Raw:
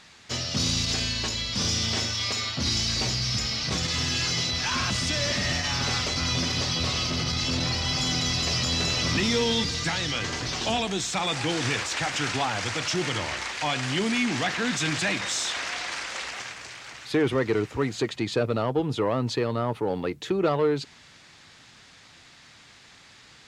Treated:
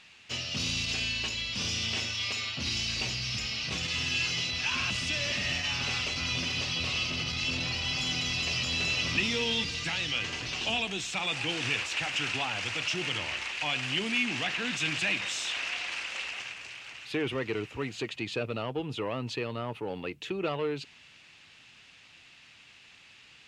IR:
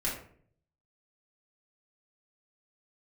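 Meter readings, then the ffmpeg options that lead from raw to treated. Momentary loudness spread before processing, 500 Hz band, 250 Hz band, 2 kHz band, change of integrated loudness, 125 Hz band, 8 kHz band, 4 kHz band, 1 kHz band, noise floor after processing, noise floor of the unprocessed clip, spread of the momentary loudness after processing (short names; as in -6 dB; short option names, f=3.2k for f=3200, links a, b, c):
5 LU, -8.5 dB, -8.5 dB, -1.0 dB, -4.5 dB, -8.5 dB, -8.0 dB, -3.5 dB, -8.0 dB, -56 dBFS, -52 dBFS, 8 LU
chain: -af "equalizer=f=2.7k:w=2.7:g=13.5,volume=-8.5dB"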